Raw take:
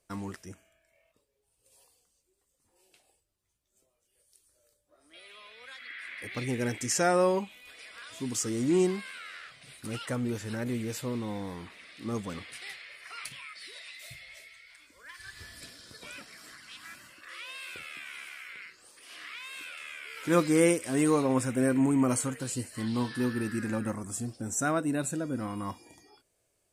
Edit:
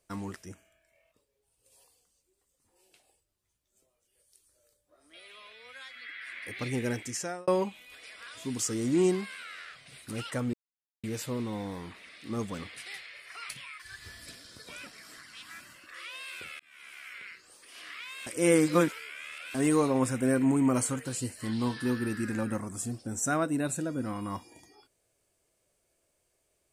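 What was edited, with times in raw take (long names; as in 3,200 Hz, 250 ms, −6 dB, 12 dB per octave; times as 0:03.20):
0:05.53–0:06.02: time-stretch 1.5×
0:06.60–0:07.23: fade out
0:10.29–0:10.79: silence
0:13.55–0:15.14: remove
0:17.94–0:18.46: fade in
0:19.61–0:20.89: reverse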